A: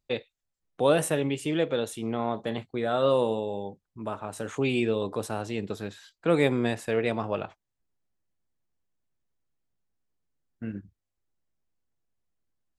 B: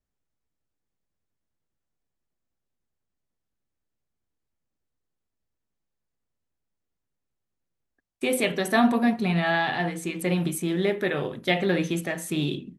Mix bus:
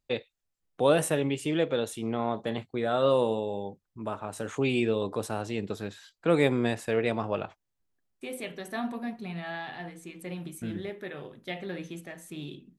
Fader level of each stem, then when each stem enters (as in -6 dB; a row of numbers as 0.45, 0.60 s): -0.5, -13.0 dB; 0.00, 0.00 s